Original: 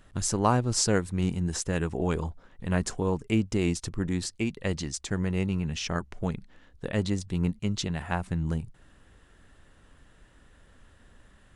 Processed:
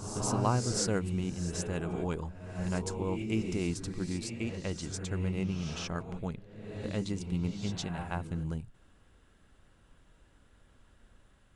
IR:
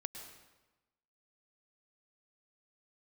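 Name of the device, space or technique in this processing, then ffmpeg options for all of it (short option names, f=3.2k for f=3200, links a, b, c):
reverse reverb: -filter_complex "[0:a]areverse[a];[1:a]atrim=start_sample=2205[b];[a][b]afir=irnorm=-1:irlink=0,areverse,bandreject=f=1.8k:w=9.9,volume=-3.5dB"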